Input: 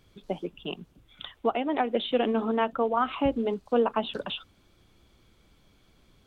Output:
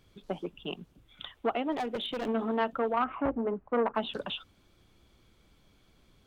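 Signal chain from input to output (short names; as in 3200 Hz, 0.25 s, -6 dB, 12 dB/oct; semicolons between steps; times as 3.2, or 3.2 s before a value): 1.72–2.28 hard clip -26.5 dBFS, distortion -13 dB; 3.02–3.95 LPF 1800 Hz 24 dB/oct; core saturation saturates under 700 Hz; gain -2 dB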